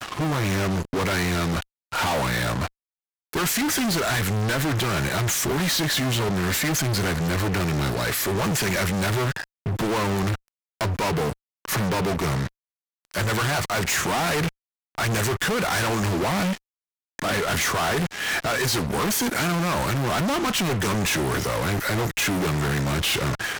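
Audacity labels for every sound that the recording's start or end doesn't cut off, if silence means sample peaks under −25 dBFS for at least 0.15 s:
1.920000	2.680000	sound
3.330000	9.440000	sound
9.660000	10.350000	sound
10.810000	11.320000	sound
11.650000	12.470000	sound
13.140000	14.490000	sound
14.980000	16.560000	sound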